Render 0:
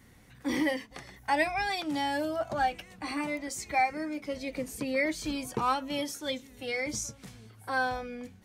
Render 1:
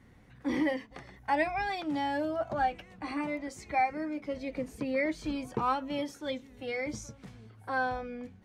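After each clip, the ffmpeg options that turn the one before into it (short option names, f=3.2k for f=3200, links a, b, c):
-af "lowpass=f=1.8k:p=1"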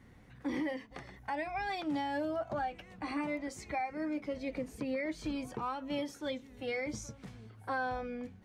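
-af "alimiter=level_in=3.5dB:limit=-24dB:level=0:latency=1:release=244,volume=-3.5dB"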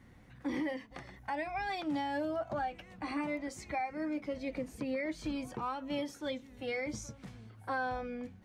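-af "bandreject=f=430:w=12"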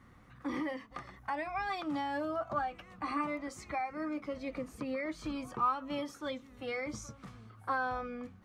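-af "equalizer=f=1.2k:w=4.3:g=14,volume=-1.5dB"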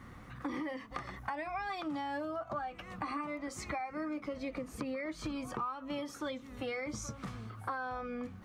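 -af "acompressor=threshold=-44dB:ratio=6,volume=8dB"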